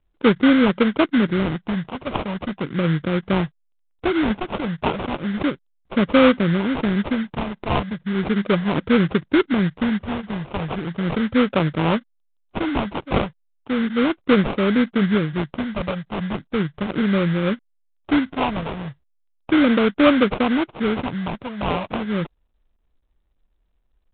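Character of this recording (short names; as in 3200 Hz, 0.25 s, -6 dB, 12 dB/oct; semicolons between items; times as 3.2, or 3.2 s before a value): phasing stages 2, 0.36 Hz, lowest notch 320–2700 Hz; aliases and images of a low sample rate 1800 Hz, jitter 20%; µ-law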